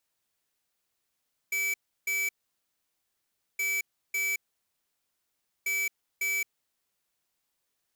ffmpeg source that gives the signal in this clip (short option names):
-f lavfi -i "aevalsrc='0.0355*(2*lt(mod(2300*t,1),0.5)-1)*clip(min(mod(mod(t,2.07),0.55),0.22-mod(mod(t,2.07),0.55))/0.005,0,1)*lt(mod(t,2.07),1.1)':d=6.21:s=44100"